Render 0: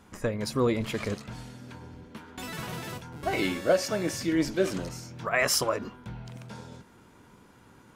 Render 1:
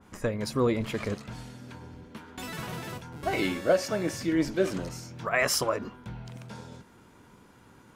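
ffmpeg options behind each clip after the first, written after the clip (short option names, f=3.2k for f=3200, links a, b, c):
-af "adynamicequalizer=threshold=0.00708:dfrequency=2500:dqfactor=0.7:tfrequency=2500:tqfactor=0.7:attack=5:release=100:ratio=0.375:range=2:mode=cutabove:tftype=highshelf"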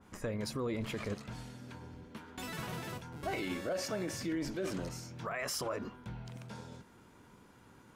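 -af "alimiter=limit=-24dB:level=0:latency=1:release=35,volume=-4dB"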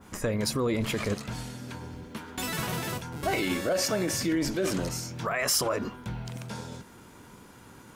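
-af "highshelf=f=5.4k:g=7,volume=8.5dB"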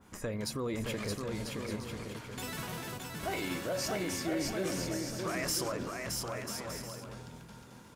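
-af "aecho=1:1:620|992|1215|1349|1429:0.631|0.398|0.251|0.158|0.1,volume=-8dB"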